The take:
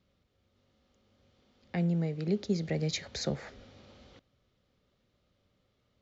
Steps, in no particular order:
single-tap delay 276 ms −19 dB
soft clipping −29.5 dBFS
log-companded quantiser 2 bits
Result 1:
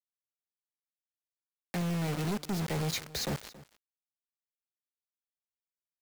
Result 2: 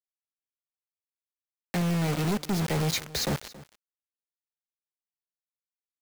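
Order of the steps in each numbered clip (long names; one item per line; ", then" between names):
log-companded quantiser, then soft clipping, then single-tap delay
soft clipping, then log-companded quantiser, then single-tap delay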